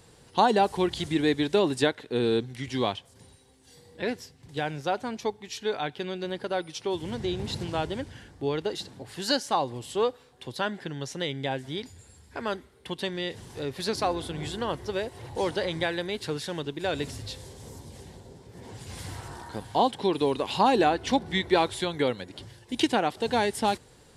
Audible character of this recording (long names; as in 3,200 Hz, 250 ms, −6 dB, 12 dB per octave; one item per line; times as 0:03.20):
background noise floor −56 dBFS
spectral slope −3.5 dB per octave